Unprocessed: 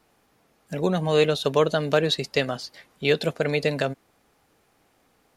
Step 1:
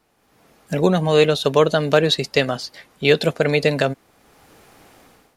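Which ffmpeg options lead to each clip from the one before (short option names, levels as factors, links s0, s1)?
-af "dynaudnorm=f=160:g=5:m=6.31,volume=0.891"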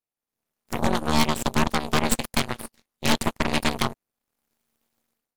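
-af "aemphasis=mode=production:type=50kf,tremolo=f=230:d=0.919,aeval=exprs='0.944*(cos(1*acos(clip(val(0)/0.944,-1,1)))-cos(1*PI/2))+0.335*(cos(3*acos(clip(val(0)/0.944,-1,1)))-cos(3*PI/2))+0.335*(cos(8*acos(clip(val(0)/0.944,-1,1)))-cos(8*PI/2))':c=same,volume=0.501"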